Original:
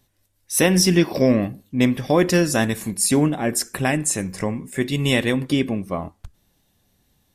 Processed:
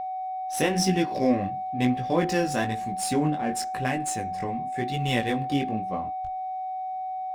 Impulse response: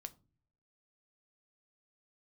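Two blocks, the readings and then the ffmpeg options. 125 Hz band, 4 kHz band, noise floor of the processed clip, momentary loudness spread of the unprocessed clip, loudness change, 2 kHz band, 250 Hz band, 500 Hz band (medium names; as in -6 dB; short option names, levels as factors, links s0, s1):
-7.0 dB, -8.0 dB, -32 dBFS, 9 LU, -7.0 dB, -7.0 dB, -7.0 dB, -7.0 dB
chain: -af "flanger=delay=15.5:depth=6.1:speed=1,aeval=exprs='val(0)+0.0562*sin(2*PI*750*n/s)':c=same,adynamicsmooth=sensitivity=6.5:basefreq=3500,volume=0.631"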